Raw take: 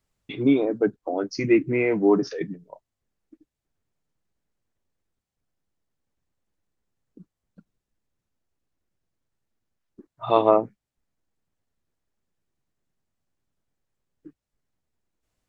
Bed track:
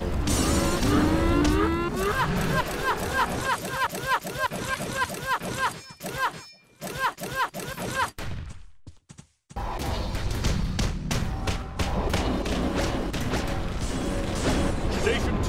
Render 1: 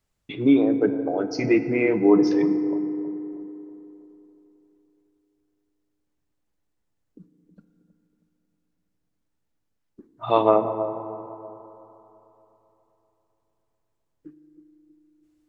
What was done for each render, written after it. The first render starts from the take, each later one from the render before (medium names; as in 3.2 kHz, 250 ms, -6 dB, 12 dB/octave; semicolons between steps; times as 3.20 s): bucket-brigade echo 319 ms, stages 2048, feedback 43%, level -12.5 dB; FDN reverb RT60 3.5 s, high-frequency decay 0.35×, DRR 9.5 dB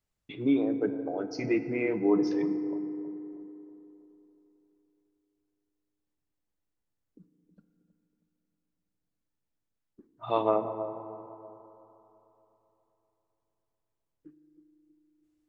trim -8 dB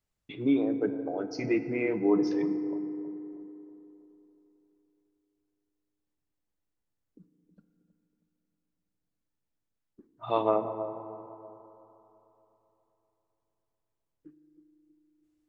no audible change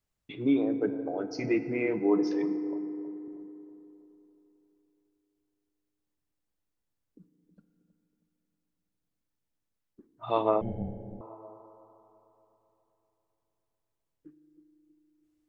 1.99–3.28 s: high-pass 200 Hz; 10.61–11.21 s: frequency shift -450 Hz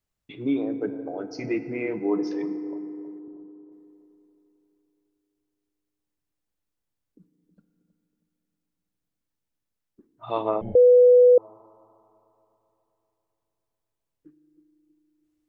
3.19–3.72 s: low-pass 1.5 kHz 24 dB/octave; 10.75–11.38 s: bleep 494 Hz -10.5 dBFS